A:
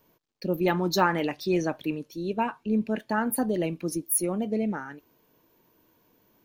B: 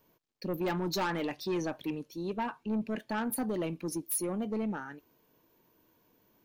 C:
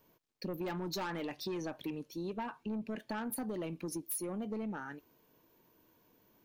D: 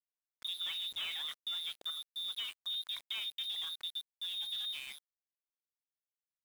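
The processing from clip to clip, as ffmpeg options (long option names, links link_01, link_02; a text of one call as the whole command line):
ffmpeg -i in.wav -af "asoftclip=type=tanh:threshold=-23dB,volume=-3.5dB" out.wav
ffmpeg -i in.wav -af "acompressor=threshold=-36dB:ratio=6" out.wav
ffmpeg -i in.wav -af "lowpass=frequency=3300:width_type=q:width=0.5098,lowpass=frequency=3300:width_type=q:width=0.6013,lowpass=frequency=3300:width_type=q:width=0.9,lowpass=frequency=3300:width_type=q:width=2.563,afreqshift=-3900,aeval=exprs='val(0)*gte(abs(val(0)),0.00562)':channel_layout=same,volume=-1dB" out.wav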